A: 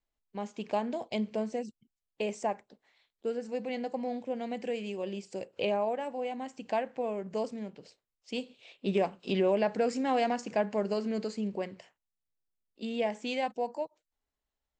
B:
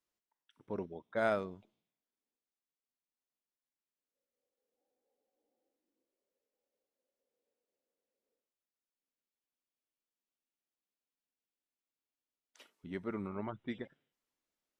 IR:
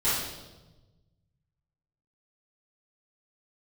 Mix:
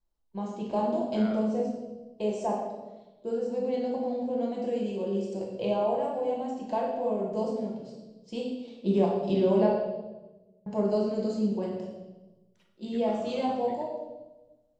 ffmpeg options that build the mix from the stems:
-filter_complex "[0:a]equalizer=f=2.1k:w=1.3:g=-14,volume=-1.5dB,asplit=3[a][b][c];[a]atrim=end=9.7,asetpts=PTS-STARTPTS,afade=t=out:st=9.696:d=0.004:c=hsin[d];[b]atrim=start=9.7:end=10.66,asetpts=PTS-STARTPTS,volume=0[e];[c]atrim=start=10.66,asetpts=PTS-STARTPTS,afade=t=in:d=0.004:c=hsin[f];[d][e][f]concat=n=3:v=0:a=1,asplit=2[g][h];[h]volume=-7dB[i];[1:a]volume=-10dB,asplit=2[j][k];[k]volume=-14dB[l];[2:a]atrim=start_sample=2205[m];[i][l]amix=inputs=2:normalize=0[n];[n][m]afir=irnorm=-1:irlink=0[o];[g][j][o]amix=inputs=3:normalize=0,highshelf=f=6k:g=-8"

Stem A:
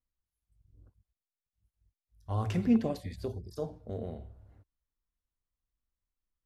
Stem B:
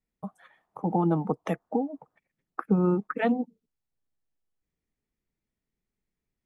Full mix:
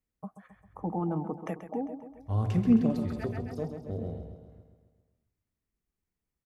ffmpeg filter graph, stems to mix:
-filter_complex "[0:a]highpass=71,lowshelf=f=420:g=10,volume=-4.5dB,asplit=3[a][b][c];[b]volume=-8dB[d];[1:a]alimiter=limit=-20dB:level=0:latency=1:release=32,equalizer=f=3.7k:w=3.1:g=-12,volume=-4dB,asplit=2[e][f];[f]volume=-11dB[g];[c]apad=whole_len=284491[h];[e][h]sidechaincompress=threshold=-45dB:ratio=8:attack=16:release=319[i];[d][g]amix=inputs=2:normalize=0,aecho=0:1:133|266|399|532|665|798|931|1064:1|0.56|0.314|0.176|0.0983|0.0551|0.0308|0.0173[j];[a][i][j]amix=inputs=3:normalize=0"

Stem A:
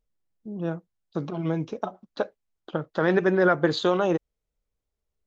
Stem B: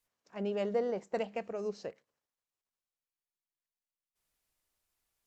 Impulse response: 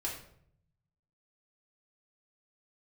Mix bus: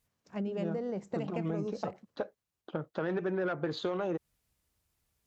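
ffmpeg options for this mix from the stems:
-filter_complex "[0:a]asoftclip=type=tanh:threshold=-15dB,highshelf=f=3.4k:g=-8.5,volume=-4.5dB[a];[1:a]bass=f=250:g=14,treble=f=4k:g=0,acompressor=threshold=-35dB:ratio=4,volume=2.5dB[b];[a][b]amix=inputs=2:normalize=0,highpass=53,acompressor=threshold=-29dB:ratio=6"

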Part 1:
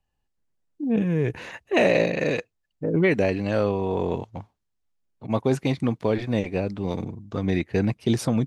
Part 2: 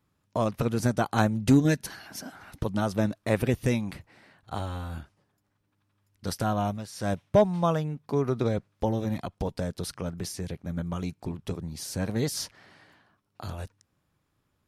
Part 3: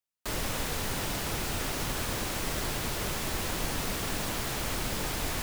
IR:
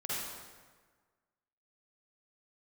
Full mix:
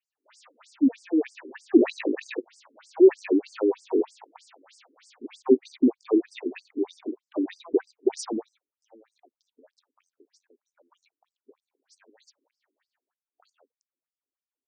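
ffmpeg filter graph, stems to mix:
-filter_complex "[0:a]lowshelf=f=440:t=q:w=3:g=6.5,asoftclip=type=tanh:threshold=-4.5dB,volume=0.5dB[a];[1:a]volume=-16.5dB[b];[2:a]equalizer=f=380:t=o:w=0.57:g=-13,volume=-14.5dB[c];[a][b][c]amix=inputs=3:normalize=0,afftfilt=real='re*between(b*sr/1024,310*pow(6700/310,0.5+0.5*sin(2*PI*3.2*pts/sr))/1.41,310*pow(6700/310,0.5+0.5*sin(2*PI*3.2*pts/sr))*1.41)':imag='im*between(b*sr/1024,310*pow(6700/310,0.5+0.5*sin(2*PI*3.2*pts/sr))/1.41,310*pow(6700/310,0.5+0.5*sin(2*PI*3.2*pts/sr))*1.41)':win_size=1024:overlap=0.75"

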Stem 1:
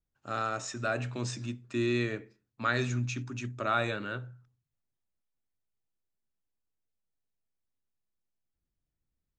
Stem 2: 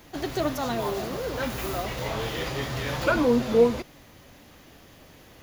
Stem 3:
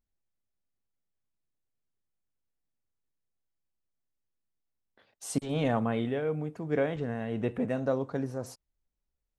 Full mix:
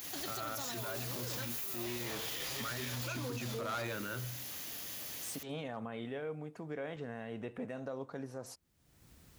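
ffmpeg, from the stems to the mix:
-filter_complex "[0:a]volume=3dB[a];[1:a]acompressor=threshold=-32dB:ratio=6,crystalizer=i=8:c=0,volume=-6.5dB[b];[2:a]lowshelf=f=470:g=-7.5,volume=-5dB[c];[a][c]amix=inputs=2:normalize=0,asoftclip=type=hard:threshold=-24.5dB,alimiter=level_in=5dB:limit=-24dB:level=0:latency=1:release=99,volume=-5dB,volume=0dB[d];[b][d]amix=inputs=2:normalize=0,highpass=69,acompressor=mode=upward:threshold=-38dB:ratio=2.5,alimiter=level_in=6.5dB:limit=-24dB:level=0:latency=1:release=44,volume=-6.5dB"

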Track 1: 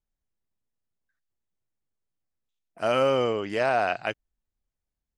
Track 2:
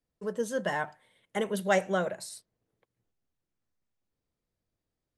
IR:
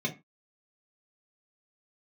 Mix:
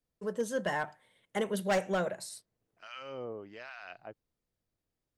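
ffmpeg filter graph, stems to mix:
-filter_complex "[0:a]lowpass=f=5.8k:w=0.5412,lowpass=f=5.8k:w=1.3066,acrossover=split=1200[a][b];[a]aeval=exprs='val(0)*(1-1/2+1/2*cos(2*PI*1.2*n/s))':c=same[c];[b]aeval=exprs='val(0)*(1-1/2-1/2*cos(2*PI*1.2*n/s))':c=same[d];[c][d]amix=inputs=2:normalize=0,volume=-13.5dB[e];[1:a]volume=-1.5dB[f];[e][f]amix=inputs=2:normalize=0,asoftclip=type=hard:threshold=-23.5dB"

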